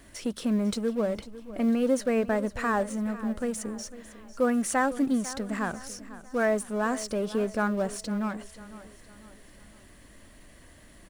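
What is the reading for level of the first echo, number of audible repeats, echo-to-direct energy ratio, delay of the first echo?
-16.0 dB, 3, -15.0 dB, 499 ms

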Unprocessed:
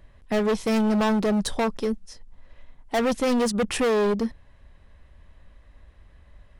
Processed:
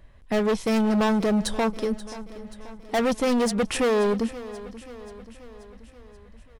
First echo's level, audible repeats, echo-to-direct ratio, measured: -16.5 dB, 4, -14.5 dB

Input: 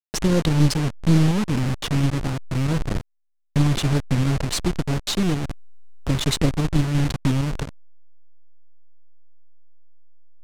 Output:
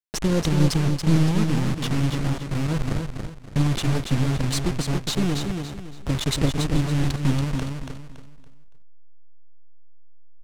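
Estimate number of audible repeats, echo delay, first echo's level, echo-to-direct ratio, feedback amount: 3, 282 ms, -5.5 dB, -5.0 dB, 32%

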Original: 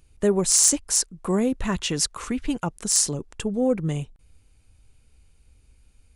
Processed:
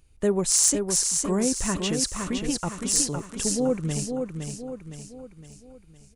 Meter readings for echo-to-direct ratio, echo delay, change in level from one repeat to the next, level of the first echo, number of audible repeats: -4.5 dB, 512 ms, -6.5 dB, -5.5 dB, 5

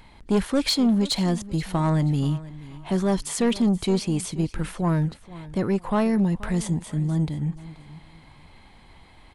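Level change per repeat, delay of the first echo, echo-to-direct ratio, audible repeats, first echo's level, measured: -11.0 dB, 480 ms, -17.5 dB, 2, -18.0 dB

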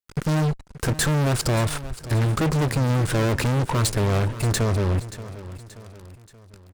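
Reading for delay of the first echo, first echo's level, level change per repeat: 579 ms, -15.0 dB, -6.5 dB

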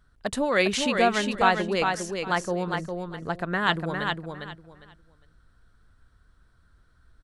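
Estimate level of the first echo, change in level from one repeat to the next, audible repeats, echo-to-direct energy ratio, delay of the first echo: -5.0 dB, -13.5 dB, 3, -5.0 dB, 405 ms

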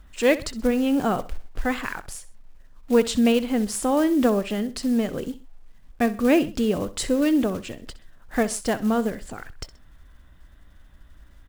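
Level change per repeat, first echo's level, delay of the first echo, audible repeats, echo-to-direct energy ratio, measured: -8.5 dB, -16.5 dB, 64 ms, 2, -16.0 dB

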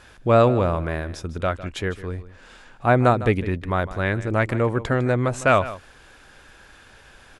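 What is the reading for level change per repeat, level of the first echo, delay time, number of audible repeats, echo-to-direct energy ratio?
no regular repeats, -15.5 dB, 154 ms, 1, -15.5 dB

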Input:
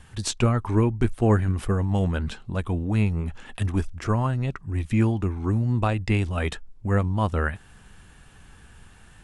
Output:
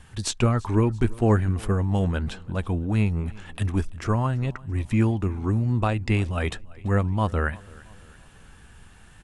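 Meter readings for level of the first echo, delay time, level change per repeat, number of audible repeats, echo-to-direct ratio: -23.0 dB, 337 ms, -6.0 dB, 2, -22.0 dB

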